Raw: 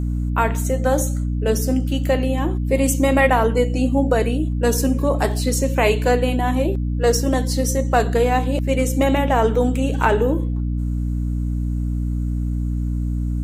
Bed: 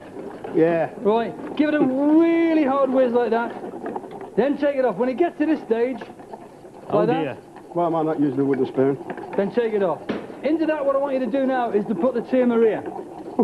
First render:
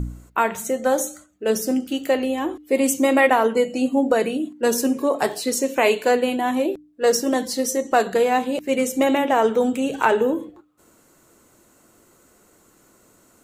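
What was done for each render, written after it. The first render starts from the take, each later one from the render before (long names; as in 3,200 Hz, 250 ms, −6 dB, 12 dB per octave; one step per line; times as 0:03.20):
hum removal 60 Hz, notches 5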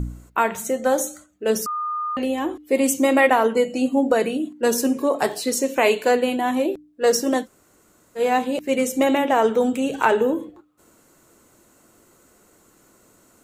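0:01.66–0:02.17: beep over 1,220 Hz −23 dBFS
0:07.43–0:08.20: fill with room tone, crossfade 0.10 s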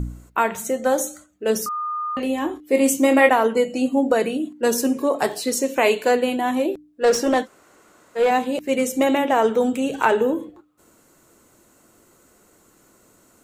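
0:01.61–0:03.29: double-tracking delay 26 ms −8 dB
0:07.04–0:08.31: mid-hump overdrive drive 15 dB, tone 2,400 Hz, clips at −8.5 dBFS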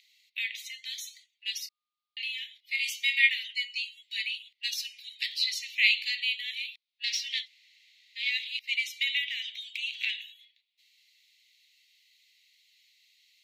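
Butterworth high-pass 2,000 Hz 96 dB per octave
high shelf with overshoot 5,800 Hz −14 dB, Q 3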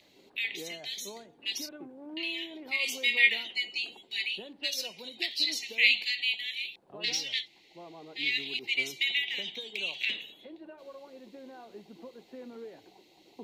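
mix in bed −27 dB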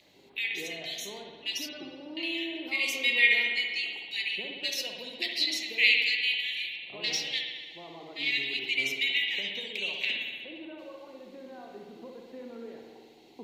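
spring reverb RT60 1.5 s, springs 60 ms, chirp 60 ms, DRR 1.5 dB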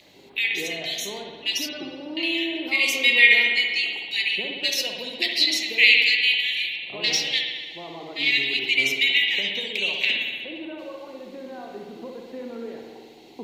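level +8 dB
brickwall limiter −3 dBFS, peak gain reduction 2 dB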